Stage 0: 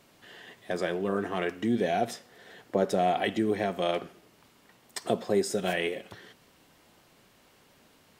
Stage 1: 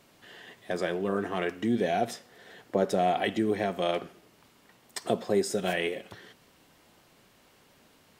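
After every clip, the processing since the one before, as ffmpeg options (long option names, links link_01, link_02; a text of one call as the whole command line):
ffmpeg -i in.wav -af anull out.wav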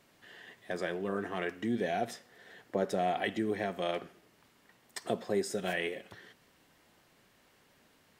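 ffmpeg -i in.wav -af "equalizer=frequency=1800:width_type=o:width=0.5:gain=4,volume=-5.5dB" out.wav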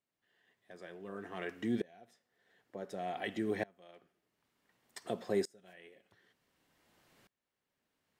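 ffmpeg -i in.wav -af "aeval=exprs='val(0)*pow(10,-28*if(lt(mod(-0.55*n/s,1),2*abs(-0.55)/1000),1-mod(-0.55*n/s,1)/(2*abs(-0.55)/1000),(mod(-0.55*n/s,1)-2*abs(-0.55)/1000)/(1-2*abs(-0.55)/1000))/20)':channel_layout=same" out.wav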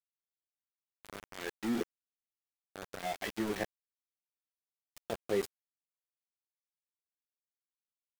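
ffmpeg -i in.wav -af "bandreject=frequency=121.3:width_type=h:width=4,bandreject=frequency=242.6:width_type=h:width=4,bandreject=frequency=363.9:width_type=h:width=4,bandreject=frequency=485.2:width_type=h:width=4,bandreject=frequency=606.5:width_type=h:width=4,flanger=delay=8.4:depth=7:regen=30:speed=0.42:shape=triangular,aeval=exprs='val(0)*gte(abs(val(0)),0.01)':channel_layout=same,volume=5dB" out.wav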